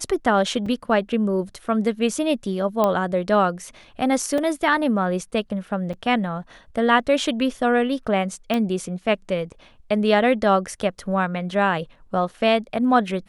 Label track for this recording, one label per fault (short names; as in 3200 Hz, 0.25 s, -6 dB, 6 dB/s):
0.660000	0.660000	gap 4.1 ms
2.840000	2.840000	pop -8 dBFS
4.380000	4.380000	gap 2.2 ms
5.930000	5.940000	gap 5.7 ms
8.540000	8.540000	pop -11 dBFS